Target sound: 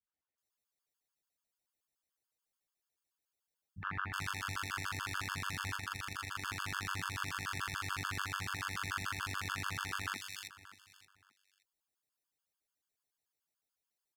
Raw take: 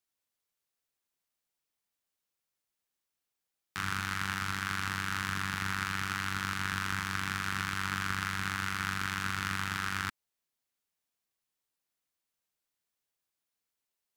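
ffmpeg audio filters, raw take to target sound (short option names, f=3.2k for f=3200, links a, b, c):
-filter_complex "[0:a]acrossover=split=190|2400[a][b][c];[b]adelay=70[d];[c]adelay=380[e];[a][d][e]amix=inputs=3:normalize=0,asettb=1/sr,asplit=3[f][g][h];[f]atrim=end=5.764[i];[g]atrim=start=5.76:end=6.42,asetpts=PTS-STARTPTS,afade=t=in:d=0.004:c=qsin,afade=t=out:st=0.656:d=0.004:c=qsin,tremolo=f=25:d=0.621[j];[h]atrim=start=6.416[k];[i][j]acrossfade=d=0.004:c1=hsin:c2=qsin[l];[l][k]acrossfade=d=0.004:c1=qsin:c2=hsin,asplit=2[m][n];[n]aecho=0:1:575|1150:0.141|0.0297[o];[m][o]amix=inputs=2:normalize=0,afftfilt=real='re*gt(sin(2*PI*6.9*pts/sr)*(1-2*mod(floor(b*sr/1024/880),2)),0)':imag='im*gt(sin(2*PI*6.9*pts/sr)*(1-2*mod(floor(b*sr/1024/880),2)),0)':win_size=1024:overlap=0.75"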